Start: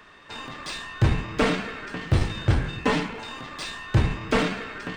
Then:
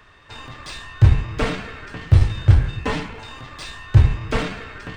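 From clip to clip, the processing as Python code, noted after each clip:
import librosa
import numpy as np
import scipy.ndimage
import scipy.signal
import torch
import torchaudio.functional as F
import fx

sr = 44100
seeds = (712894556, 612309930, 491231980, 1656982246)

y = fx.low_shelf_res(x, sr, hz=140.0, db=9.0, q=1.5)
y = y * librosa.db_to_amplitude(-1.0)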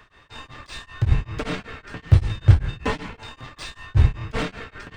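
y = x * np.abs(np.cos(np.pi * 5.2 * np.arange(len(x)) / sr))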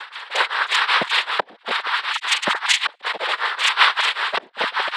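y = fx.sine_speech(x, sr)
y = fx.gate_flip(y, sr, shuts_db=-9.0, range_db=-37)
y = fx.noise_vocoder(y, sr, seeds[0], bands=6)
y = y * librosa.db_to_amplitude(5.0)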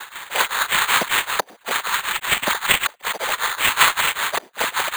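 y = fx.sample_hold(x, sr, seeds[1], rate_hz=5400.0, jitter_pct=0)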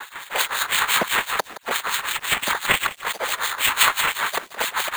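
y = fx.harmonic_tremolo(x, sr, hz=5.9, depth_pct=70, crossover_hz=2400.0)
y = fx.echo_crushed(y, sr, ms=170, feedback_pct=35, bits=6, wet_db=-14.5)
y = y * librosa.db_to_amplitude(1.5)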